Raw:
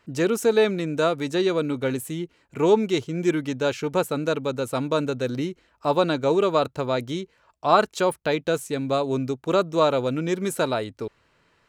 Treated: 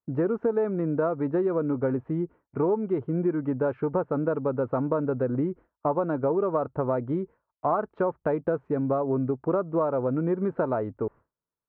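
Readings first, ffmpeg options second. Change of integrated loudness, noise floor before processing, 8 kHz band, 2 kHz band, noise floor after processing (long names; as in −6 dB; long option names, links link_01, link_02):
−3.5 dB, −64 dBFS, below −40 dB, −11.5 dB, below −85 dBFS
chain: -af "lowpass=frequency=1300:width=0.5412,lowpass=frequency=1300:width=1.3066,agate=range=-33dB:threshold=-42dB:ratio=3:detection=peak,acompressor=threshold=-25dB:ratio=6,volume=3dB"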